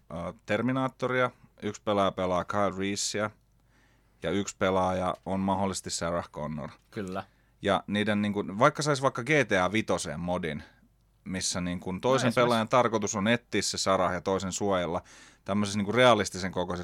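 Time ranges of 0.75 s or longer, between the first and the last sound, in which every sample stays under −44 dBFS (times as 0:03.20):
0:03.30–0:04.22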